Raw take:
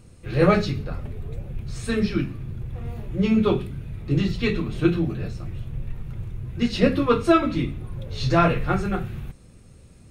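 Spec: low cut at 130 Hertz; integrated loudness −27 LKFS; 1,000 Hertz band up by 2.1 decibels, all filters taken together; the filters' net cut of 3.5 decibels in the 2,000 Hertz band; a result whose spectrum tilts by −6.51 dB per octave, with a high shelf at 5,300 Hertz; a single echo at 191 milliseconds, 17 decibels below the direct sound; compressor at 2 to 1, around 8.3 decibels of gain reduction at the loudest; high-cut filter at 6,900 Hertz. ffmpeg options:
ffmpeg -i in.wav -af "highpass=130,lowpass=6900,equalizer=frequency=1000:width_type=o:gain=6,equalizer=frequency=2000:width_type=o:gain=-6,highshelf=frequency=5300:gain=-6,acompressor=threshold=-27dB:ratio=2,aecho=1:1:191:0.141,volume=3.5dB" out.wav

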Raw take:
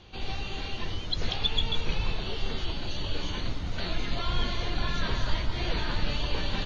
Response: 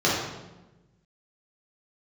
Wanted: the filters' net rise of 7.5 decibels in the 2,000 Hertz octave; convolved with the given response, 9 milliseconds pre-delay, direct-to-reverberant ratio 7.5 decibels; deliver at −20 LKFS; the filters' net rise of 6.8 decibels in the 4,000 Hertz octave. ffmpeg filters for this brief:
-filter_complex "[0:a]equalizer=frequency=2000:width_type=o:gain=8,equalizer=frequency=4000:width_type=o:gain=5.5,asplit=2[link_01][link_02];[1:a]atrim=start_sample=2205,adelay=9[link_03];[link_02][link_03]afir=irnorm=-1:irlink=0,volume=-24.5dB[link_04];[link_01][link_04]amix=inputs=2:normalize=0,volume=6.5dB"

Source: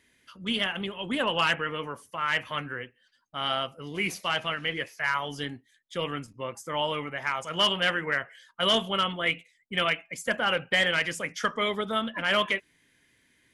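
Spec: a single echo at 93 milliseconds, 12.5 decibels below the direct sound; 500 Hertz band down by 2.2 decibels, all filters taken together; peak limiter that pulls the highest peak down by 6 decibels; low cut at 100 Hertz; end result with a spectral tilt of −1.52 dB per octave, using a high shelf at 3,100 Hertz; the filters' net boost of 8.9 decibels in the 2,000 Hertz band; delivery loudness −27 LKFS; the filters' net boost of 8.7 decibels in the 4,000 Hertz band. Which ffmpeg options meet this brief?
ffmpeg -i in.wav -af "highpass=100,equalizer=frequency=500:width_type=o:gain=-3.5,equalizer=frequency=2000:width_type=o:gain=8,highshelf=frequency=3100:gain=6,equalizer=frequency=4000:width_type=o:gain=4,alimiter=limit=-9.5dB:level=0:latency=1,aecho=1:1:93:0.237,volume=-5dB" out.wav

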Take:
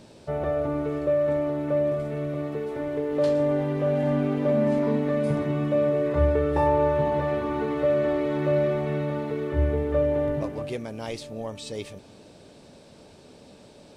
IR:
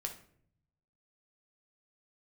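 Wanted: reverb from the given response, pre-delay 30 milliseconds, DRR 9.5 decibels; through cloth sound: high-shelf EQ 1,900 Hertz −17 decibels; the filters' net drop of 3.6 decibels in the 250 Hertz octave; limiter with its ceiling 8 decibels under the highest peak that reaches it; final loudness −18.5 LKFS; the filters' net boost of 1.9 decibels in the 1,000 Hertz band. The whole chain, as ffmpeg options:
-filter_complex "[0:a]equalizer=frequency=250:width_type=o:gain=-4.5,equalizer=frequency=1000:width_type=o:gain=6.5,alimiter=limit=-18dB:level=0:latency=1,asplit=2[link_01][link_02];[1:a]atrim=start_sample=2205,adelay=30[link_03];[link_02][link_03]afir=irnorm=-1:irlink=0,volume=-9dB[link_04];[link_01][link_04]amix=inputs=2:normalize=0,highshelf=frequency=1900:gain=-17,volume=11dB"

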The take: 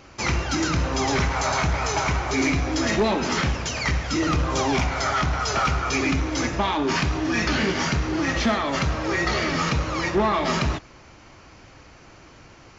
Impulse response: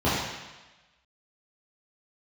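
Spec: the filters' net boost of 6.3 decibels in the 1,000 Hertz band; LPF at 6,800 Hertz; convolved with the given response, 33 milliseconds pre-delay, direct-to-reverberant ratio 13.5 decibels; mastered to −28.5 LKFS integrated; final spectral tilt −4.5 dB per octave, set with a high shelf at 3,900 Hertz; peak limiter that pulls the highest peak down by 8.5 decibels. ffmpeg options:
-filter_complex "[0:a]lowpass=6800,equalizer=frequency=1000:width_type=o:gain=8.5,highshelf=frequency=3900:gain=-6,alimiter=limit=-16dB:level=0:latency=1,asplit=2[link_01][link_02];[1:a]atrim=start_sample=2205,adelay=33[link_03];[link_02][link_03]afir=irnorm=-1:irlink=0,volume=-30.5dB[link_04];[link_01][link_04]amix=inputs=2:normalize=0,volume=-5dB"

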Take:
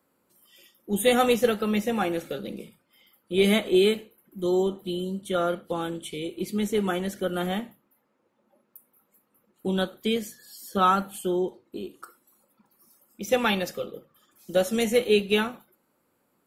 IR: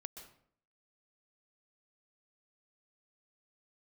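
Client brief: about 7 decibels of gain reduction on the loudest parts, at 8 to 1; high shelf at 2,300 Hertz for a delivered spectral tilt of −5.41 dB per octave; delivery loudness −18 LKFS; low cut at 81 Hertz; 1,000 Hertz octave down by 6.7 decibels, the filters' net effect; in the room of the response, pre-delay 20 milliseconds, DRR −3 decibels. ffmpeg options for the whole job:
-filter_complex "[0:a]highpass=81,equalizer=frequency=1000:width_type=o:gain=-8.5,highshelf=frequency=2300:gain=-7,acompressor=threshold=-24dB:ratio=8,asplit=2[link_01][link_02];[1:a]atrim=start_sample=2205,adelay=20[link_03];[link_02][link_03]afir=irnorm=-1:irlink=0,volume=7.5dB[link_04];[link_01][link_04]amix=inputs=2:normalize=0,volume=8.5dB"

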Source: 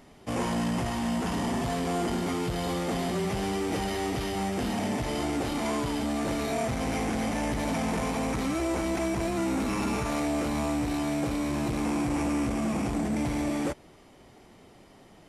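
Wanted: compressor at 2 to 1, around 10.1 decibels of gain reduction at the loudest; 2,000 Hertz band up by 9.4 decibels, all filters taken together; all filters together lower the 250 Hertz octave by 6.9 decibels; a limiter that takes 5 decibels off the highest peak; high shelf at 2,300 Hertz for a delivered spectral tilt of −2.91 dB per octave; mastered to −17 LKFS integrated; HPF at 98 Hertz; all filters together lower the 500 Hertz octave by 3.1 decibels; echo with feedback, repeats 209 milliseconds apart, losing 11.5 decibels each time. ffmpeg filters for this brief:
ffmpeg -i in.wav -af "highpass=98,equalizer=frequency=250:width_type=o:gain=-8,equalizer=frequency=500:width_type=o:gain=-3,equalizer=frequency=2000:width_type=o:gain=8.5,highshelf=frequency=2300:gain=5.5,acompressor=threshold=-44dB:ratio=2,alimiter=level_in=5.5dB:limit=-24dB:level=0:latency=1,volume=-5.5dB,aecho=1:1:209|418|627:0.266|0.0718|0.0194,volume=22dB" out.wav

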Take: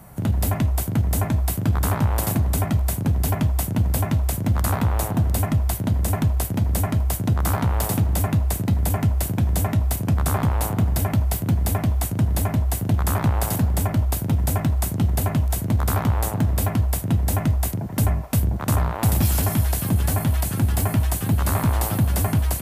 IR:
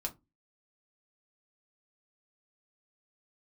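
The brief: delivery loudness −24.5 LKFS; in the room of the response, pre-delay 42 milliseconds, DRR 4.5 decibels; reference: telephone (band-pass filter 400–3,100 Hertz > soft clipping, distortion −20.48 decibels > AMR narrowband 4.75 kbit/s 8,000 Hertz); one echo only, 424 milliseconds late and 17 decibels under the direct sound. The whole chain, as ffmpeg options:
-filter_complex "[0:a]aecho=1:1:424:0.141,asplit=2[link_01][link_02];[1:a]atrim=start_sample=2205,adelay=42[link_03];[link_02][link_03]afir=irnorm=-1:irlink=0,volume=-5dB[link_04];[link_01][link_04]amix=inputs=2:normalize=0,highpass=400,lowpass=3100,asoftclip=threshold=-18dB,volume=12dB" -ar 8000 -c:a libopencore_amrnb -b:a 4750

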